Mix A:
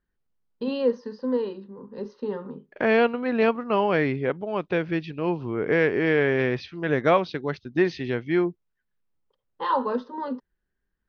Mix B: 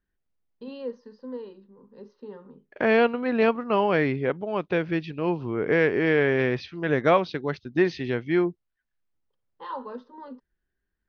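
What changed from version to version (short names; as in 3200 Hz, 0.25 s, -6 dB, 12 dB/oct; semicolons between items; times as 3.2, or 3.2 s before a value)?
first voice -11.0 dB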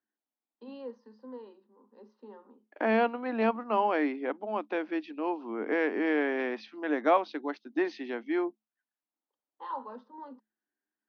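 master: add rippled Chebyshev high-pass 210 Hz, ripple 9 dB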